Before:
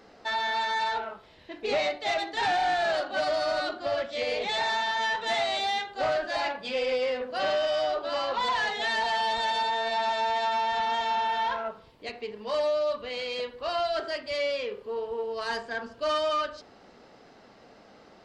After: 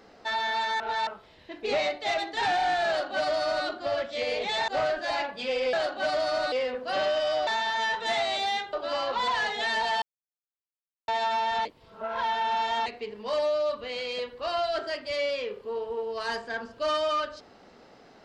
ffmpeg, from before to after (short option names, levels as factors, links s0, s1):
-filter_complex "[0:a]asplit=12[s0][s1][s2][s3][s4][s5][s6][s7][s8][s9][s10][s11];[s0]atrim=end=0.802[s12];[s1]atrim=start=0.798:end=1.072,asetpts=PTS-STARTPTS,areverse[s13];[s2]atrim=start=1.068:end=4.682[s14];[s3]atrim=start=5.938:end=6.992[s15];[s4]atrim=start=2.868:end=3.662[s16];[s5]atrim=start=6.988:end=7.942[s17];[s6]atrim=start=4.678:end=5.942[s18];[s7]atrim=start=7.938:end=9.23,asetpts=PTS-STARTPTS,afade=t=out:st=1.288:d=0.004:c=hsin[s19];[s8]atrim=start=9.23:end=10.29,asetpts=PTS-STARTPTS,volume=0[s20];[s9]atrim=start=10.29:end=10.862,asetpts=PTS-STARTPTS,afade=t=in:d=0.004:c=hsin[s21];[s10]atrim=start=10.858:end=12.072,asetpts=PTS-STARTPTS,areverse[s22];[s11]atrim=start=12.068[s23];[s12][s13]acrossfade=d=0.004:c1=hsin:c2=hsin[s24];[s24][s14]acrossfade=d=0.004:c1=hsin:c2=hsin[s25];[s25][s15]acrossfade=d=0.004:c1=hsin:c2=hsin[s26];[s26][s16]acrossfade=d=0.004:c1=hsin:c2=hsin[s27];[s27][s17]acrossfade=d=0.004:c1=hsin:c2=hsin[s28];[s28][s18]acrossfade=d=0.004:c1=hsin:c2=hsin[s29];[s19][s20][s21]concat=n=3:v=0:a=1[s30];[s29][s30]acrossfade=d=0.004:c1=hsin:c2=hsin[s31];[s31][s22]acrossfade=d=0.004:c1=hsin:c2=hsin[s32];[s32][s23]acrossfade=d=0.004:c1=hsin:c2=hsin"